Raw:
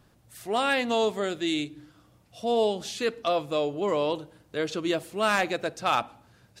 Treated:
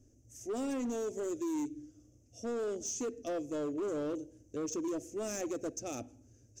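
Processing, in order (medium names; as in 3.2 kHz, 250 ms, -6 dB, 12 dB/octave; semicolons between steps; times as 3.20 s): FFT filter 110 Hz 0 dB, 170 Hz -19 dB, 260 Hz +3 dB, 630 Hz -10 dB, 950 Hz -29 dB, 2.6 kHz -18 dB, 4.1 kHz -26 dB, 6.2 kHz +8 dB, 9.3 kHz -14 dB; peak limiter -26.5 dBFS, peak gain reduction 6.5 dB; overload inside the chain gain 32 dB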